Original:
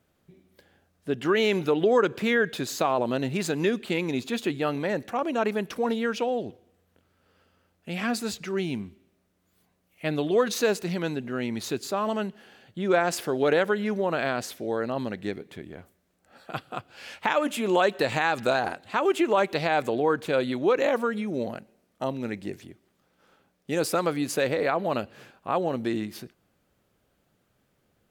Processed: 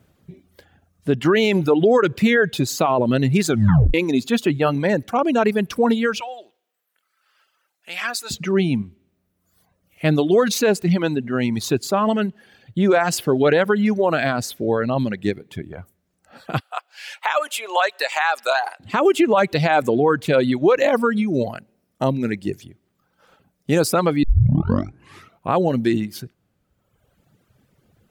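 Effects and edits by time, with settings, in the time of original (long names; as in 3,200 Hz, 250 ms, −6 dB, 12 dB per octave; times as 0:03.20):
0:03.48: tape stop 0.46 s
0:06.20–0:08.31: high-pass filter 1,100 Hz
0:16.60–0:18.80: high-pass filter 670 Hz 24 dB per octave
0:24.23: tape start 1.29 s
whole clip: reverb reduction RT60 1.3 s; parametric band 110 Hz +8.5 dB 2.1 octaves; boost into a limiter +14.5 dB; level −6.5 dB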